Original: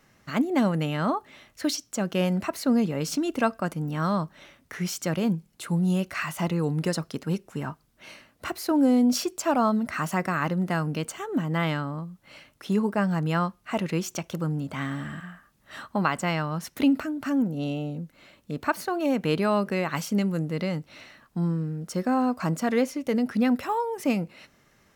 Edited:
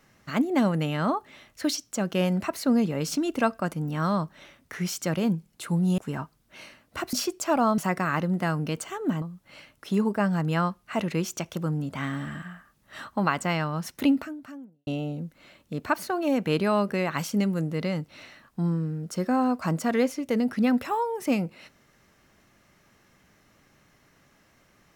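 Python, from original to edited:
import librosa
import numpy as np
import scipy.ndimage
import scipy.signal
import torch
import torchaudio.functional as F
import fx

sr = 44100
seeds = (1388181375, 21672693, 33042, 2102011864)

y = fx.edit(x, sr, fx.cut(start_s=5.98, length_s=1.48),
    fx.cut(start_s=8.61, length_s=0.5),
    fx.cut(start_s=9.76, length_s=0.3),
    fx.cut(start_s=11.5, length_s=0.5),
    fx.fade_out_span(start_s=16.85, length_s=0.8, curve='qua'), tone=tone)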